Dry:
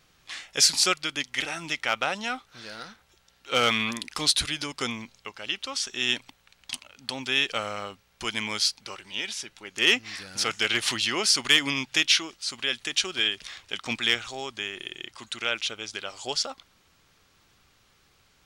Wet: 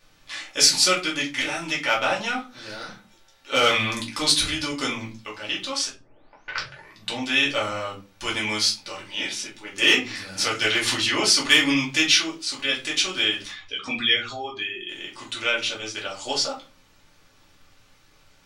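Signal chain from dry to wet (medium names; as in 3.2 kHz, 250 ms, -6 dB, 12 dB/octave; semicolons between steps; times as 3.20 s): 13.51–14.89 s: spectral contrast enhancement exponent 2; hum notches 60/120/180/240/300 Hz; 5.89 s: tape start 1.35 s; simulated room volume 140 m³, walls furnished, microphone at 2.5 m; trim -1.5 dB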